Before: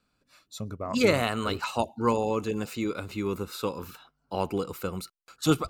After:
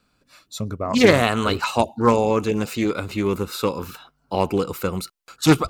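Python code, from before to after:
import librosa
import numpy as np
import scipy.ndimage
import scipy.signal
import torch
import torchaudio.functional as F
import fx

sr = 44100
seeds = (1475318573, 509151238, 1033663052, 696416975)

y = fx.doppler_dist(x, sr, depth_ms=0.25)
y = y * 10.0 ** (8.0 / 20.0)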